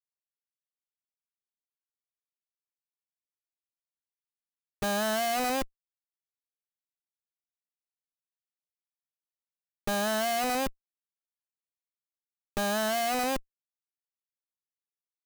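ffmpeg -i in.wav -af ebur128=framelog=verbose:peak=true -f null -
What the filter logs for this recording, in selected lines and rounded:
Integrated loudness:
  I:         -29.4 LUFS
  Threshold: -39.6 LUFS
Loudness range:
  LRA:         5.8 LU
  Threshold: -54.0 LUFS
  LRA low:   -38.2 LUFS
  LRA high:  -32.4 LUFS
True peak:
  Peak:      -19.5 dBFS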